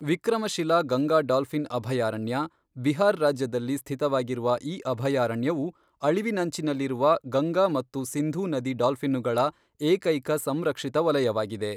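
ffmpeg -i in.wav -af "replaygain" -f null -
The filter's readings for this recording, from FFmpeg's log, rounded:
track_gain = +6.2 dB
track_peak = 0.236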